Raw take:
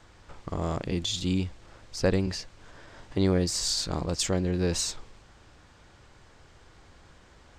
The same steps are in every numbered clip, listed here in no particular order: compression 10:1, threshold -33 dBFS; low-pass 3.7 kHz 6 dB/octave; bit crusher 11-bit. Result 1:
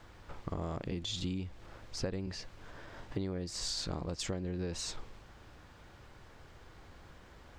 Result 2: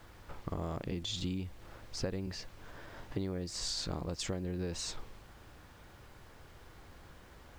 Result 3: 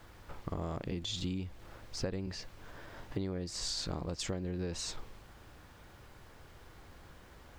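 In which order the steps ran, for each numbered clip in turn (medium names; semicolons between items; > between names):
bit crusher > low-pass > compression; low-pass > compression > bit crusher; low-pass > bit crusher > compression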